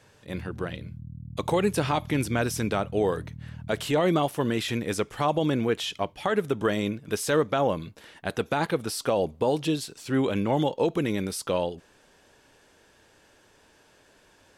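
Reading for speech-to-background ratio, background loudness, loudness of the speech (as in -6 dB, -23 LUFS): 14.5 dB, -42.0 LUFS, -27.5 LUFS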